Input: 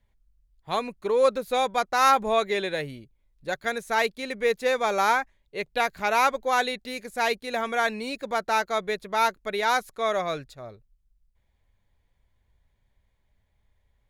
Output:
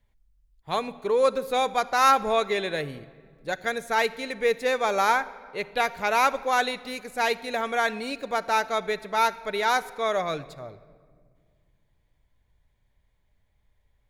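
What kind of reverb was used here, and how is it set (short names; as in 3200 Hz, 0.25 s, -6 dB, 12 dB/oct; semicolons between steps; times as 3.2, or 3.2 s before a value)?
shoebox room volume 3300 m³, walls mixed, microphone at 0.41 m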